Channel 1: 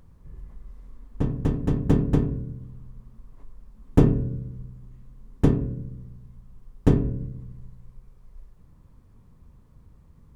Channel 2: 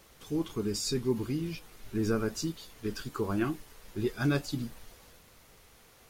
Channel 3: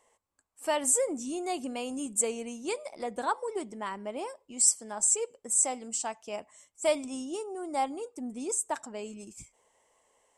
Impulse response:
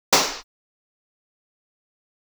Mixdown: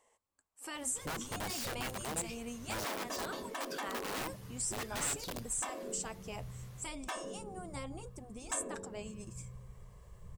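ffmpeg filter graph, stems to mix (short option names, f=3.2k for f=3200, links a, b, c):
-filter_complex "[0:a]aecho=1:1:1.8:0.86,adelay=1650,volume=1dB[a];[1:a]aeval=exprs='(mod(26.6*val(0)+1,2)-1)/26.6':c=same,equalizer=f=95:w=1.5:g=6,asoftclip=type=tanh:threshold=-31.5dB,adelay=750,volume=-3dB[b];[2:a]acompressor=threshold=-29dB:ratio=6,volume=-3.5dB,asplit=2[c][d];[d]apad=whole_len=529486[e];[a][e]sidechaincompress=threshold=-40dB:ratio=10:attack=39:release=502[f];[f][b][c]amix=inputs=3:normalize=0,afftfilt=real='re*lt(hypot(re,im),0.0891)':imag='im*lt(hypot(re,im),0.0891)':win_size=1024:overlap=0.75"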